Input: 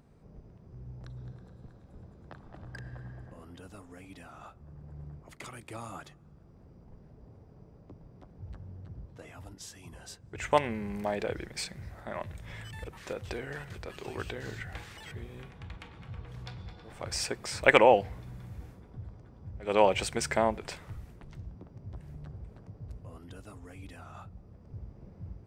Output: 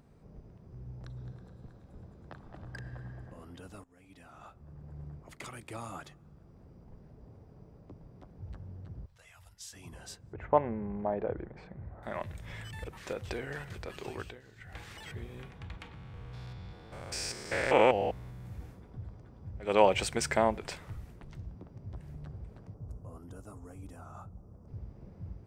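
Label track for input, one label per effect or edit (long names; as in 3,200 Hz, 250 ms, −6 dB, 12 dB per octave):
3.840000	5.090000	fade in equal-power, from −19.5 dB
9.060000	9.730000	guitar amp tone stack bass-middle-treble 10-0-10
10.330000	12.030000	Chebyshev low-pass filter 900 Hz
14.060000	14.910000	duck −17 dB, fades 0.36 s
15.940000	18.460000	spectrum averaged block by block every 200 ms
22.740000	24.680000	flat-topped bell 2,800 Hz −12.5 dB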